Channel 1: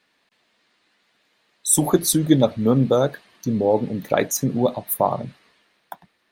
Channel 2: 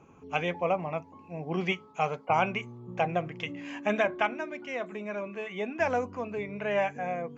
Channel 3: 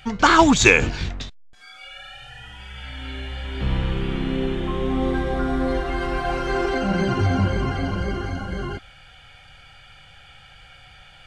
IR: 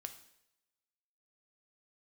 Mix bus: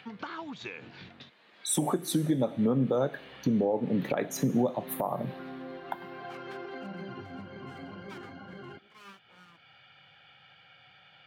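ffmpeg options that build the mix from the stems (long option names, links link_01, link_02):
-filter_complex "[0:a]volume=2.5dB,asplit=3[link_01][link_02][link_03];[link_02]volume=-11dB[link_04];[1:a]aeval=exprs='sgn(val(0))*max(abs(val(0))-0.00944,0)':channel_layout=same,acrossover=split=420[link_05][link_06];[link_05]aeval=exprs='val(0)*(1-1/2+1/2*cos(2*PI*2.3*n/s))':channel_layout=same[link_07];[link_06]aeval=exprs='val(0)*(1-1/2-1/2*cos(2*PI*2.3*n/s))':channel_layout=same[link_08];[link_07][link_08]amix=inputs=2:normalize=0,aeval=exprs='abs(val(0))':channel_layout=same,adelay=2300,volume=-15dB[link_09];[2:a]acompressor=threshold=-22dB:ratio=16,volume=-14dB[link_10];[link_03]apad=whole_len=426775[link_11];[link_09][link_11]sidechaincompress=threshold=-35dB:ratio=8:attack=16:release=461[link_12];[link_01][link_10]amix=inputs=2:normalize=0,lowpass=frequency=4400:width=0.5412,lowpass=frequency=4400:width=1.3066,acompressor=threshold=-21dB:ratio=6,volume=0dB[link_13];[3:a]atrim=start_sample=2205[link_14];[link_04][link_14]afir=irnorm=-1:irlink=0[link_15];[link_12][link_13][link_15]amix=inputs=3:normalize=0,acompressor=mode=upward:threshold=-48dB:ratio=2.5,highpass=frequency=130:width=0.5412,highpass=frequency=130:width=1.3066,alimiter=limit=-17dB:level=0:latency=1:release=301"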